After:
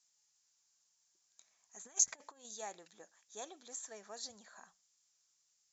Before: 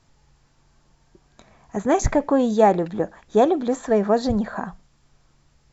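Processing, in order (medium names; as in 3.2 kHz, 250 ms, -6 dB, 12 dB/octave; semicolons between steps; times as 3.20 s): 1.85–2.45 s: compressor with a negative ratio -23 dBFS, ratio -0.5; band-pass filter 6.6 kHz, Q 2.8; trim -1.5 dB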